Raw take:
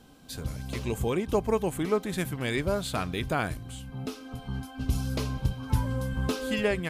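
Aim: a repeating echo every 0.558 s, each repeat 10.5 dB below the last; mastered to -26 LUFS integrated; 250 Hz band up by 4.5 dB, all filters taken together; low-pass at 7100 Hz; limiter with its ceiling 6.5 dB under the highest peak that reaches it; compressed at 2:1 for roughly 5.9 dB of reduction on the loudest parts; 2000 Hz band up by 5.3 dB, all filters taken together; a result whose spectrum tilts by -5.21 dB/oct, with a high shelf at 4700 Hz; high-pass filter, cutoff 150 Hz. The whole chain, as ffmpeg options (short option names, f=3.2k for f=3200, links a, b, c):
-af "highpass=150,lowpass=7.1k,equalizer=f=250:t=o:g=6.5,equalizer=f=2k:t=o:g=5.5,highshelf=f=4.7k:g=6.5,acompressor=threshold=-29dB:ratio=2,alimiter=limit=-21dB:level=0:latency=1,aecho=1:1:558|1116|1674:0.299|0.0896|0.0269,volume=7dB"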